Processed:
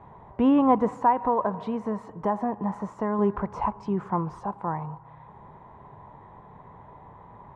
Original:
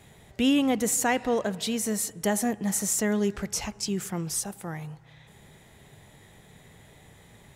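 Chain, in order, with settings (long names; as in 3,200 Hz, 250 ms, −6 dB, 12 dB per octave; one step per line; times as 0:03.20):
0:00.97–0:03.19: downward compressor, threshold −27 dBFS, peak gain reduction 7.5 dB
low-pass with resonance 1,000 Hz, resonance Q 9.3
level +2 dB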